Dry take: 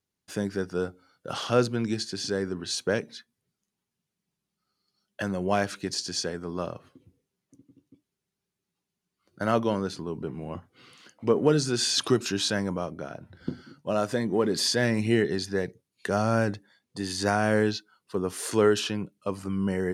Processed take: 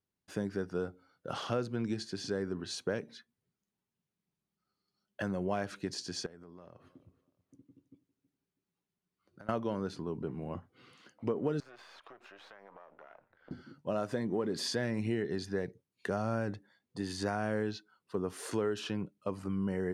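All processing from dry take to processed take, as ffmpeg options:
-filter_complex "[0:a]asettb=1/sr,asplit=3[a][b][c];[a]atrim=end=6.264[d];[b]atrim=start=6.26:end=9.49,asetpts=PTS-STARTPTS,afade=t=in:d=0.004:c=qsin,afade=t=out:st=3.226:d=0.004:c=qsin,acompressor=threshold=-44dB:ratio=12:attack=3.2:release=140:knee=1:detection=peak,aecho=1:1:323|646:0.119|0.0345,atrim=end_sample=142443[e];[c]atrim=start=9.486[f];[d][e]acrossfade=d=0.004:c1=hsin:c2=qsin[g];[g][f]acrossfade=d=0.004:c1=qsin:c2=hsin,asettb=1/sr,asplit=3[h][i][j];[h]atrim=end=11.604[k];[i]atrim=start=11.6:end=13.51,asetpts=PTS-STARTPTS,afade=t=in:d=0.004:c=qsin,afade=t=out:st=1.906:d=0.004:c=qsin,aeval=exprs='if(lt(val(0),0),0.251*val(0),val(0))':c=same,acrossover=split=500 3000:gain=0.0708 1 0.1[l][m][n];[l][m][n]amix=inputs=3:normalize=0,acompressor=threshold=-44dB:ratio=12:attack=3.2:release=140:knee=1:detection=peak[o];[j]atrim=start=13.506[p];[k][o]acrossfade=d=0.004:c1=hsin:c2=qsin[q];[q][p]acrossfade=d=0.004:c1=qsin:c2=hsin,highshelf=f=2.9k:g=-8.5,acompressor=threshold=-26dB:ratio=4,volume=-3.5dB"

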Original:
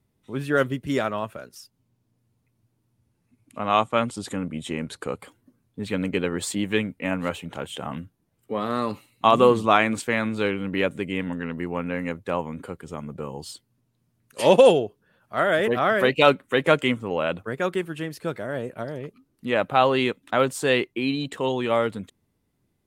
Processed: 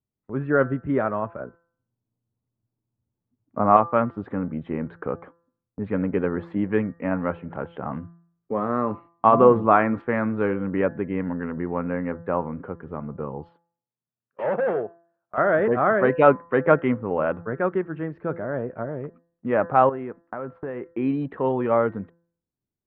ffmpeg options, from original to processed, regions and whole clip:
-filter_complex "[0:a]asettb=1/sr,asplit=3[a][b][c];[a]atrim=end=1.404[d];[b]atrim=start=1.4:end=3.77,asetpts=PTS-STARTPTS,afade=t=in:d=0.004:c=qsin,afade=t=out:st=2.366:d=0.004:c=qsin,lowpass=1.3k,acontrast=59[e];[c]atrim=start=3.766[f];[d][e]acrossfade=d=0.004:c1=hsin:c2=qsin[g];[g][f]acrossfade=d=0.004:c1=qsin:c2=hsin,asettb=1/sr,asplit=3[h][i][j];[h]atrim=end=13.494[k];[i]atrim=start=13.49:end=15.38,asetpts=PTS-STARTPTS,afade=t=in:d=0.004:c=qsin,afade=t=out:st=1.886:d=0.004:c=qsin,equalizer=f=280:t=o:w=1:g=-8,asoftclip=type=hard:threshold=-22.5dB,highpass=200,lowpass=3.5k[l];[j]atrim=start=15.376[m];[k][l]acrossfade=d=0.004:c1=hsin:c2=qsin[n];[n][m]acrossfade=d=0.004:c1=qsin:c2=hsin,asettb=1/sr,asplit=3[o][p][q];[o]atrim=end=19.894[r];[p]atrim=start=19.89:end=20.86,asetpts=PTS-STARTPTS,afade=t=in:d=0.004:c=qsin,afade=t=out:st=0.966:d=0.004:c=qsin,lowpass=2.1k,acompressor=threshold=-30dB:ratio=6:attack=3.2:release=140:knee=1:detection=peak[s];[q]atrim=start=20.856[t];[r][s]acrossfade=d=0.004:c1=hsin:c2=qsin[u];[u][t]acrossfade=d=0.004:c1=qsin:c2=hsin,agate=range=-20dB:threshold=-45dB:ratio=16:detection=peak,lowpass=f=1.6k:w=0.5412,lowpass=f=1.6k:w=1.3066,bandreject=f=169.4:t=h:w=4,bandreject=f=338.8:t=h:w=4,bandreject=f=508.2:t=h:w=4,bandreject=f=677.6:t=h:w=4,bandreject=f=847:t=h:w=4,bandreject=f=1.0164k:t=h:w=4,bandreject=f=1.1858k:t=h:w=4,bandreject=f=1.3552k:t=h:w=4,bandreject=f=1.5246k:t=h:w=4,bandreject=f=1.694k:t=h:w=4,bandreject=f=1.8634k:t=h:w=4,volume=2dB"

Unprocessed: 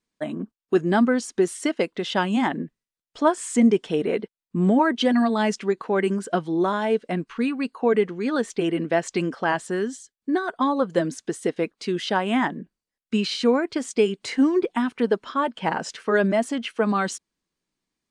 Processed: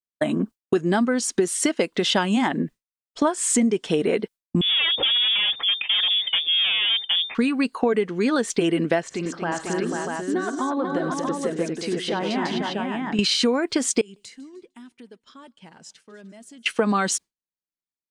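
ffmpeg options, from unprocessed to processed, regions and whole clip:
-filter_complex "[0:a]asettb=1/sr,asplit=3[a][b][c];[a]atrim=end=4.614[d];[b]atrim=start=4.61:end=7.35,asetpts=PTS-STARTPTS,afade=t=in:d=0.004:c=qsin,afade=t=out:st=2.736:d=0.004:c=qsin,bandreject=f=2.1k:w=6.5,aeval=exprs='(tanh(22.4*val(0)+0.3)-tanh(0.3))/22.4':c=same,lowpass=f=3.1k:t=q:w=0.5098,lowpass=f=3.1k:t=q:w=0.6013,lowpass=f=3.1k:t=q:w=0.9,lowpass=f=3.1k:t=q:w=2.563,afreqshift=-3600[e];[c]atrim=start=7.346[f];[d][e]acrossfade=d=0.004:c1=hsin:c2=qsin[g];[g][f]acrossfade=d=0.004:c1=qsin:c2=hsin,asettb=1/sr,asplit=3[h][i][j];[h]atrim=end=9.024[k];[i]atrim=start=9.02:end=13.19,asetpts=PTS-STARTPTS,afade=t=in:d=0.004:c=qsin,afade=t=out:st=4.166:d=0.004:c=qsin,aemphasis=mode=reproduction:type=75kf,acompressor=threshold=-42dB:ratio=2:attack=3.2:release=140:knee=1:detection=peak,aecho=1:1:49|86|99|233|492|640:0.15|0.126|0.211|0.473|0.596|0.668,atrim=end_sample=183897[l];[j]atrim=start=13.186[m];[k][l]acrossfade=d=0.004:c1=hsin:c2=qsin[n];[n][m]acrossfade=d=0.004:c1=qsin:c2=hsin,asettb=1/sr,asplit=3[o][p][q];[o]atrim=end=14.014[r];[p]atrim=start=14.01:end=16.66,asetpts=PTS-STARTPTS,afade=t=in:d=0.004:c=qsin,afade=t=out:st=2.646:d=0.004:c=qsin,equalizer=f=890:w=0.32:g=-12.5,acompressor=threshold=-42dB:ratio=8:attack=3.2:release=140:knee=1:detection=peak,aecho=1:1:152|304|456|608:0.0708|0.0425|0.0255|0.0153,atrim=end_sample=116865[s];[q]atrim=start=16.656[t];[r][s]acrossfade=d=0.004:c1=hsin:c2=qsin[u];[u][t]acrossfade=d=0.004:c1=qsin:c2=hsin,agate=range=-33dB:threshold=-37dB:ratio=3:detection=peak,highshelf=f=3.9k:g=7,acompressor=threshold=-27dB:ratio=6,volume=9dB"

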